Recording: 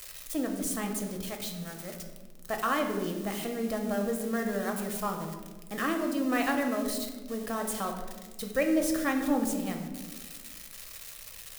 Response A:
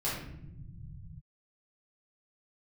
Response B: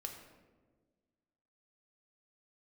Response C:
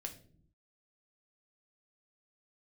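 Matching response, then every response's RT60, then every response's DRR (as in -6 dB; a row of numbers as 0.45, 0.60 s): B; not exponential, 1.4 s, 0.55 s; -9.0, 2.5, 3.5 dB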